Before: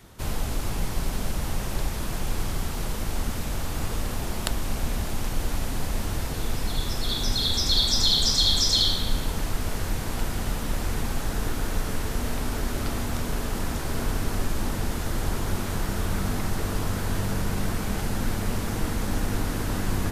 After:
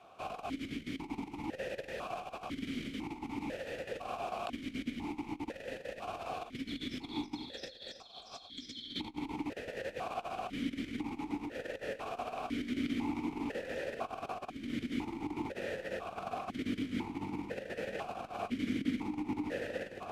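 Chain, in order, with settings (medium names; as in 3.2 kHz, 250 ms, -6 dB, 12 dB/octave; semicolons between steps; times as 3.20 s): compressor with a negative ratio -27 dBFS, ratio -0.5; stepped vowel filter 2 Hz; trim +5.5 dB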